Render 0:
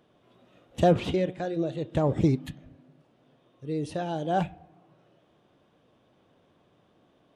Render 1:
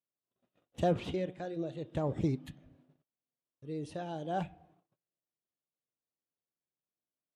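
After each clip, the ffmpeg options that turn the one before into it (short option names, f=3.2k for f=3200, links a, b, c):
-af "agate=range=-31dB:threshold=-56dB:ratio=16:detection=peak,volume=-8.5dB"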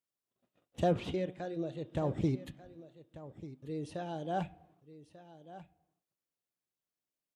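-af "aecho=1:1:1191:0.168"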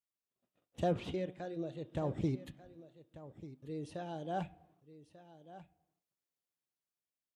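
-af "dynaudnorm=f=140:g=9:m=4dB,volume=-7dB"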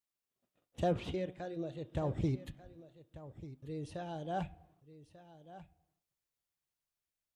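-af "asubboost=boost=4:cutoff=110,volume=1dB"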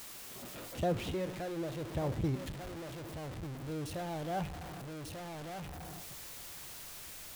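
-af "aeval=exprs='val(0)+0.5*0.0133*sgn(val(0))':c=same,volume=-1.5dB"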